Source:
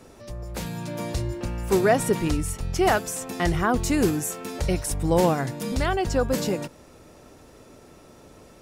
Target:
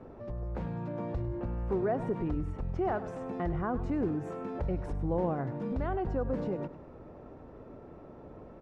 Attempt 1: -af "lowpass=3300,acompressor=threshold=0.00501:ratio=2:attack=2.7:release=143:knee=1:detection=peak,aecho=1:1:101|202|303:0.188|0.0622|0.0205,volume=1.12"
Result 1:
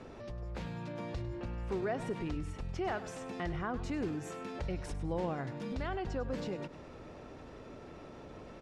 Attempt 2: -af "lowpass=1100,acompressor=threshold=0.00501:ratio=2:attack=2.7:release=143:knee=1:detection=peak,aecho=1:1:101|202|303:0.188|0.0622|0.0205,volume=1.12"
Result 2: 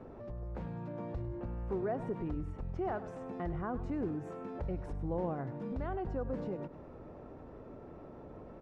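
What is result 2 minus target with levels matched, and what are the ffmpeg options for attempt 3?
compression: peak gain reduction +5 dB
-af "lowpass=1100,acompressor=threshold=0.0158:ratio=2:attack=2.7:release=143:knee=1:detection=peak,aecho=1:1:101|202|303:0.188|0.0622|0.0205,volume=1.12"

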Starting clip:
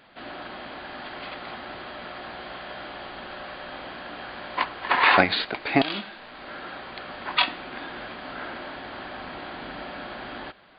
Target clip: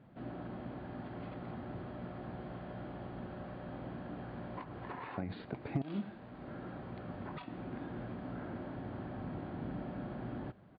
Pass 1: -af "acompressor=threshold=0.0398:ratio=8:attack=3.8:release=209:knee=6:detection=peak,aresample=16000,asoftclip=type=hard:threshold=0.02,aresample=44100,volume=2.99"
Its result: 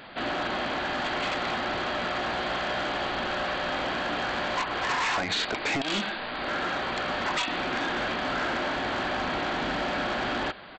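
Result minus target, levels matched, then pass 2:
125 Hz band -14.5 dB
-af "acompressor=threshold=0.0398:ratio=8:attack=3.8:release=209:knee=6:detection=peak,bandpass=f=120:t=q:w=1.5:csg=0,aresample=16000,asoftclip=type=hard:threshold=0.02,aresample=44100,volume=2.99"

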